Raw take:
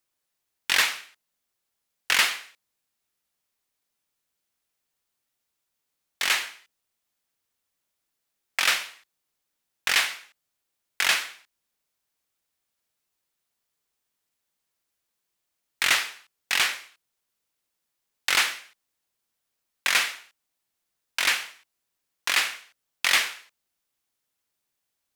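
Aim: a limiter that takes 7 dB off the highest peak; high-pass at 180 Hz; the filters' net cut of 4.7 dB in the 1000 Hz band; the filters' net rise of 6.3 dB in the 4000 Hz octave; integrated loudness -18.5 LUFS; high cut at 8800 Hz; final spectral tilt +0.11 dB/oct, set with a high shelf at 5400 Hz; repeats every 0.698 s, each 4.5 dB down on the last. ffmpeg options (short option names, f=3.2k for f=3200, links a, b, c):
-af "highpass=180,lowpass=8.8k,equalizer=f=1k:t=o:g=-7.5,equalizer=f=4k:t=o:g=5.5,highshelf=f=5.4k:g=8,alimiter=limit=-9.5dB:level=0:latency=1,aecho=1:1:698|1396|2094|2792|3490|4188|4886|5584|6282:0.596|0.357|0.214|0.129|0.0772|0.0463|0.0278|0.0167|0.01,volume=6.5dB"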